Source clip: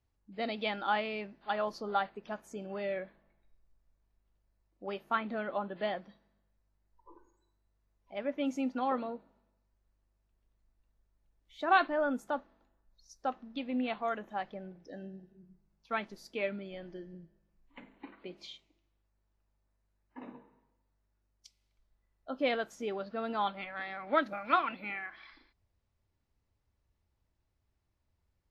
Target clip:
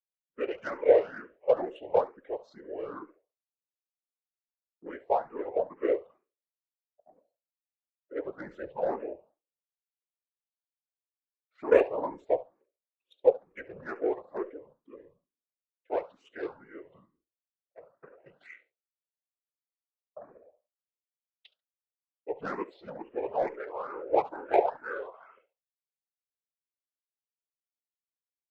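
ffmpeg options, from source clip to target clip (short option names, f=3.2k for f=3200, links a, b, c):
-filter_complex "[0:a]highpass=f=810:t=q:w=5.3,highshelf=f=4.7k:g=11.5,acontrast=58,asetrate=27781,aresample=44100,atempo=1.5874,afftfilt=real='hypot(re,im)*cos(2*PI*random(0))':imag='hypot(re,im)*sin(2*PI*random(1))':win_size=512:overlap=0.75,agate=range=-33dB:threshold=-52dB:ratio=3:detection=peak,adynamicsmooth=sensitivity=2:basefreq=2.3k,aecho=1:1:70|140:0.126|0.0214,asplit=2[a][b];[b]afreqshift=2.2[c];[a][c]amix=inputs=2:normalize=1"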